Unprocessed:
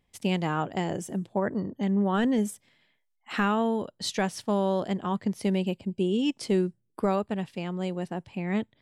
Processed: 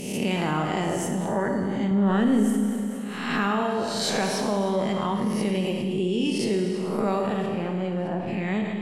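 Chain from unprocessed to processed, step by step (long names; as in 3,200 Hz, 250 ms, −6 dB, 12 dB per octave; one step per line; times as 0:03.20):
peak hold with a rise ahead of every peak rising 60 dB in 0.63 s
0:01.91–0:02.46: low-shelf EQ 480 Hz +8.5 dB
0:07.46–0:08.27: low-pass filter 1,300 Hz 6 dB per octave
four-comb reverb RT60 1.7 s, combs from 26 ms, DRR 3 dB
envelope flattener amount 50%
level −6 dB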